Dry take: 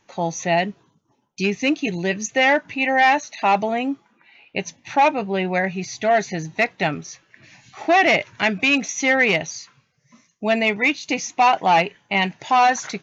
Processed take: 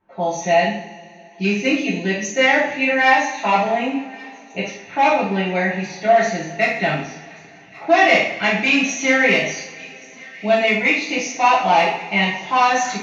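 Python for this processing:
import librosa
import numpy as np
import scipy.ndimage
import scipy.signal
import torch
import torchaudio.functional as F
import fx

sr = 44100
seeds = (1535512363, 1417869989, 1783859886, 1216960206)

y = fx.env_lowpass(x, sr, base_hz=1200.0, full_db=-18.0)
y = fx.echo_wet_highpass(y, sr, ms=1128, feedback_pct=55, hz=1800.0, wet_db=-20.5)
y = fx.rev_double_slope(y, sr, seeds[0], early_s=0.59, late_s=3.4, knee_db=-22, drr_db=-9.0)
y = y * 10.0 ** (-7.0 / 20.0)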